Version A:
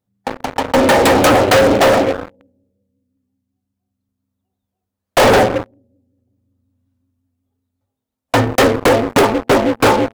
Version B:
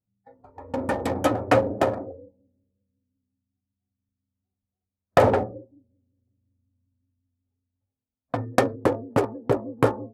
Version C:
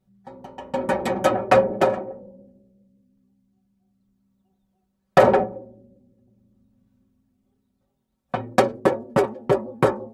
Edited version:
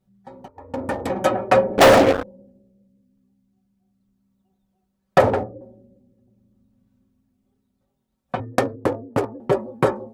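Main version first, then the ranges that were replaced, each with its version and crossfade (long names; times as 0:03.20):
C
0:00.48–0:01.10: punch in from B
0:01.78–0:02.23: punch in from A
0:05.21–0:05.61: punch in from B
0:08.40–0:09.40: punch in from B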